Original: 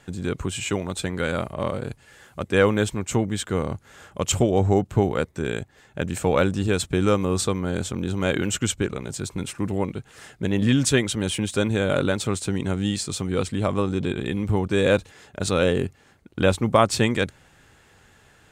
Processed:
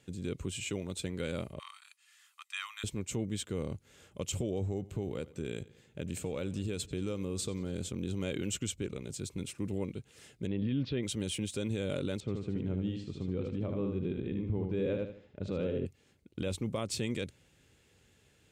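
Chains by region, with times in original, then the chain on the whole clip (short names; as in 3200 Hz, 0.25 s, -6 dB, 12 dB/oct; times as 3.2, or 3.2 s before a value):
1.59–2.84 steep high-pass 930 Hz 72 dB/oct + comb 1.6 ms, depth 41%
4.64–7.89 notch 5600 Hz, Q 23 + compressor 4:1, threshold -22 dBFS + analogue delay 91 ms, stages 4096, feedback 54%, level -20 dB
10.47–11.03 steep low-pass 4500 Hz 48 dB/oct + high shelf 2200 Hz -11 dB + mismatched tape noise reduction encoder only
12.2–15.86 tape spacing loss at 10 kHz 37 dB + feedback echo 76 ms, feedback 33%, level -5 dB
whole clip: HPF 41 Hz; band shelf 1100 Hz -9 dB; limiter -15.5 dBFS; gain -9 dB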